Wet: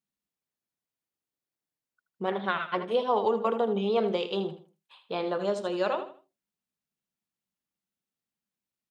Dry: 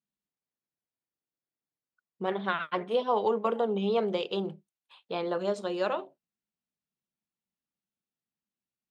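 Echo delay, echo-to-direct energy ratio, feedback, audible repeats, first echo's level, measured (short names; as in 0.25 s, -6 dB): 79 ms, -10.5 dB, 28%, 3, -11.0 dB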